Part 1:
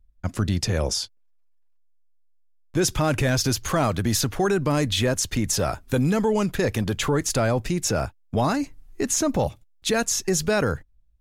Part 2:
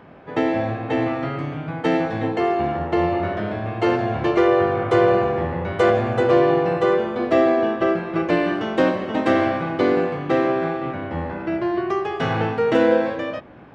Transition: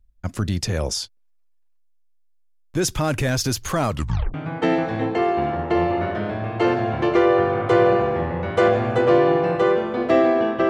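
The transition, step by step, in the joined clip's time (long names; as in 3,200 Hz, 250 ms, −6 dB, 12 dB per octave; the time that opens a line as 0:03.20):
part 1
0:03.90: tape stop 0.44 s
0:04.34: continue with part 2 from 0:01.56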